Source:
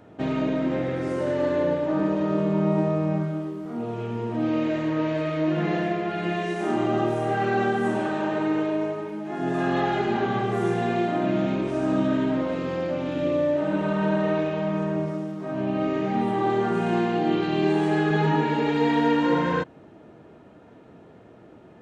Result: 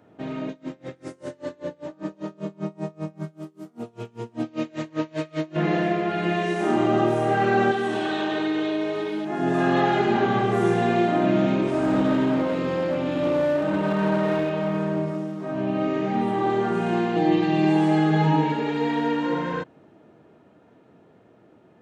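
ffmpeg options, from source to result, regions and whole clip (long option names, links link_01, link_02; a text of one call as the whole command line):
ffmpeg -i in.wav -filter_complex "[0:a]asettb=1/sr,asplit=3[link_01][link_02][link_03];[link_01]atrim=end=0.494[link_04];[link_02]atrim=start=0.49:end=5.56,asetpts=PTS-STARTPTS,afade=type=in:duration=0.004:curve=qsin,afade=type=out:start_time=5.066:duration=0.004:curve=qsin,bass=frequency=250:gain=1,treble=frequency=4000:gain=12,aeval=exprs='val(0)*pow(10,-29*(0.5-0.5*cos(2*PI*5.1*n/s))/20)':channel_layout=same[link_05];[link_03]atrim=start=5.556[link_06];[link_04][link_05]acrossfade=duration=0.004:curve1=hsin:curve2=qsin[link_07];[link_07][link_06]acrossfade=duration=0.004:curve1=qsin:curve2=hsin,asettb=1/sr,asplit=3[link_08][link_09][link_10];[link_08]atrim=end=7.714[link_11];[link_09]atrim=start=7.71:end=9.25,asetpts=PTS-STARTPTS,afade=type=in:duration=0.004:curve=qsin,afade=type=out:start_time=1.536:duration=0.004:curve=qsin,equalizer=frequency=3600:width_type=o:width=0.99:gain=13.5,aecho=1:1:2.7:0.45,atrim=end_sample=67914,acompressor=threshold=-26dB:ratio=3:attack=3.2:release=140:knee=1:detection=peak[link_12];[link_10]atrim=start=9.246[link_13];[link_11][link_12]acrossfade=duration=0.004:curve1=hsin:curve2=qsin[link_14];[link_14][link_13]acrossfade=duration=0.004:curve1=qsin:curve2=hsin,asettb=1/sr,asplit=3[link_15][link_16][link_17];[link_15]atrim=end=11.704[link_18];[link_16]atrim=start=11.7:end=15.16,asetpts=PTS-STARTPTS,afade=type=in:duration=0.004:curve=qsin,afade=type=out:start_time=3.456:duration=0.004:curve=qsin,bandreject=frequency=5900:width=12,aeval=exprs='clip(val(0),-1,0.0708)':channel_layout=same[link_19];[link_17]atrim=start=15.156[link_20];[link_18][link_19]acrossfade=duration=0.004:curve1=hsin:curve2=qsin[link_21];[link_21][link_20]acrossfade=duration=0.004:curve1=qsin:curve2=hsin,asettb=1/sr,asplit=3[link_22][link_23][link_24];[link_22]atrim=end=17.164[link_25];[link_23]atrim=start=17.16:end=18.52,asetpts=PTS-STARTPTS,afade=type=in:duration=0.004:curve=qsin,afade=type=out:start_time=1.356:duration=0.004:curve=qsin,bandreject=frequency=1400:width=9.1,aecho=1:1:6.2:0.85,atrim=end_sample=59976[link_26];[link_24]atrim=start=18.516[link_27];[link_25][link_26]acrossfade=duration=0.004:curve1=hsin:curve2=qsin[link_28];[link_28][link_27]acrossfade=duration=0.004:curve1=qsin:curve2=hsin,highpass=93,dynaudnorm=framelen=650:gausssize=13:maxgain=11.5dB,volume=-5.5dB" out.wav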